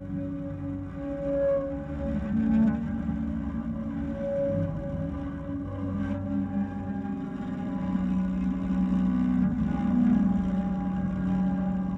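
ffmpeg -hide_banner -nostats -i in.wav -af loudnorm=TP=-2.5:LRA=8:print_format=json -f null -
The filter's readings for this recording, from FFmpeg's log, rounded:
"input_i" : "-28.2",
"input_tp" : "-14.5",
"input_lra" : "5.1",
"input_thresh" : "-38.2",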